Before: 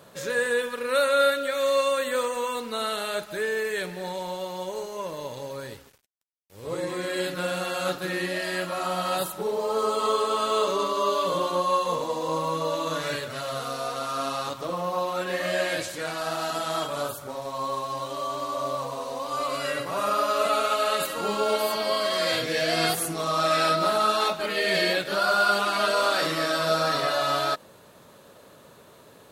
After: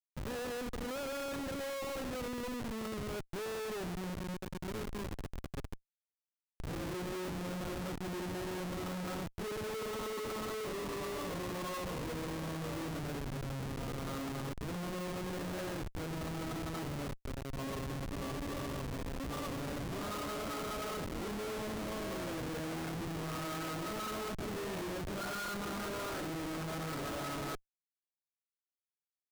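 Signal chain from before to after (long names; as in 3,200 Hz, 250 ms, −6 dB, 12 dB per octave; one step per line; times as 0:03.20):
drawn EQ curve 350 Hz 0 dB, 640 Hz −14 dB, 1,300 Hz −8 dB, 8,100 Hz −26 dB
comparator with hysteresis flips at −37 dBFS
level −4 dB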